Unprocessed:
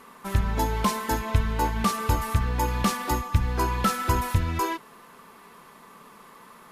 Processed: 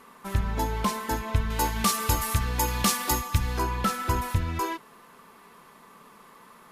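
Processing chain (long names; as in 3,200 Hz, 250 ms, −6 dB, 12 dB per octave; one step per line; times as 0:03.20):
0:01.50–0:03.59: high-shelf EQ 2,900 Hz +12 dB
level −2.5 dB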